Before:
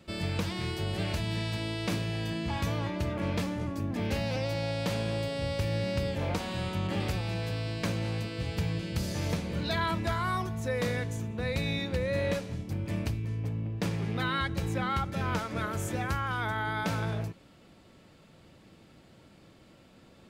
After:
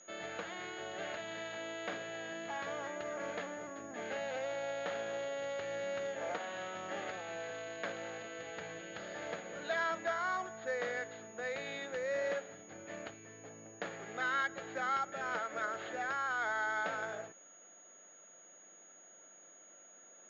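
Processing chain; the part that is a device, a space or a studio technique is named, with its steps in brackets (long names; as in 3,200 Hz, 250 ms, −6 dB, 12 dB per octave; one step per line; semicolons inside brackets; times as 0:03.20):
toy sound module (linearly interpolated sample-rate reduction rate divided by 4×; switching amplifier with a slow clock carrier 6,700 Hz; loudspeaker in its box 640–4,600 Hz, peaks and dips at 670 Hz +3 dB, 990 Hz −9 dB, 1,600 Hz +3 dB, 2,500 Hz −7 dB)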